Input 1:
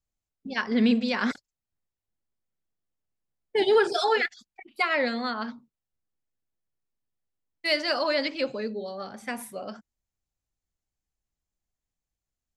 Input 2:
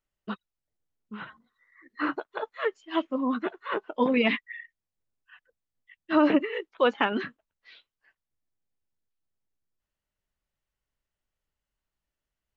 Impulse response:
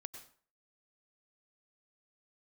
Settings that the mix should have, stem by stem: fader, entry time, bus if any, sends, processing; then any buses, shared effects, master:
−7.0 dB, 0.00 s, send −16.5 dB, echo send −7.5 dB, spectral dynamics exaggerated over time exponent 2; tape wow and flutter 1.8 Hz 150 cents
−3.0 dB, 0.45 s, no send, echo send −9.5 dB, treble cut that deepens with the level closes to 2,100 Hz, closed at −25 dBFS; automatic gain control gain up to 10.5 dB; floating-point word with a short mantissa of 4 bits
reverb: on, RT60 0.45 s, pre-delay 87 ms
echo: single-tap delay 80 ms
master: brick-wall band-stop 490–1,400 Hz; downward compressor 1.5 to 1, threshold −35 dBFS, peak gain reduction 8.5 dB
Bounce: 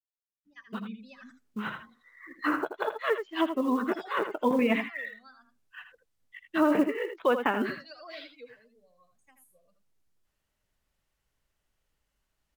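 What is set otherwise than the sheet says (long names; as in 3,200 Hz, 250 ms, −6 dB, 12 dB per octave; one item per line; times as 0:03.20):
stem 1 −7.0 dB → −17.5 dB
master: missing brick-wall band-stop 490–1,400 Hz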